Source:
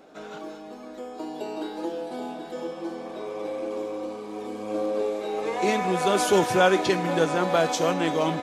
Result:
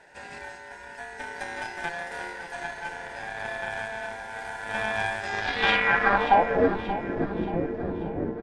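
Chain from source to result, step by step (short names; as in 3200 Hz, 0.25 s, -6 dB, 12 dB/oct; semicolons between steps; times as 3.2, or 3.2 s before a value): ring modulator 1200 Hz; added harmonics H 8 -16 dB, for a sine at -7 dBFS; low-pass sweep 9100 Hz -> 340 Hz, 5.18–6.76; on a send: feedback echo 0.581 s, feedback 45%, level -12 dB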